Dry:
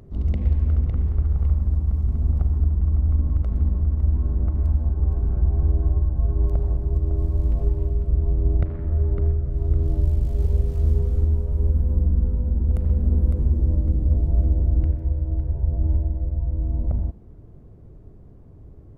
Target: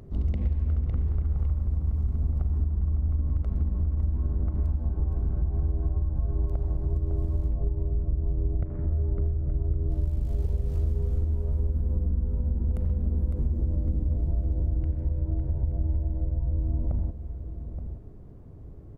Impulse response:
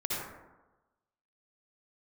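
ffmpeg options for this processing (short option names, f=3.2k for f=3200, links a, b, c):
-filter_complex "[0:a]asplit=2[a][b];[b]adelay=874.6,volume=-13dB,highshelf=f=4k:g=-19.7[c];[a][c]amix=inputs=2:normalize=0,acompressor=threshold=-22dB:ratio=6,asplit=3[d][e][f];[d]afade=t=out:st=7.48:d=0.02[g];[e]lowpass=f=1k:p=1,afade=t=in:st=7.48:d=0.02,afade=t=out:st=9.9:d=0.02[h];[f]afade=t=in:st=9.9:d=0.02[i];[g][h][i]amix=inputs=3:normalize=0"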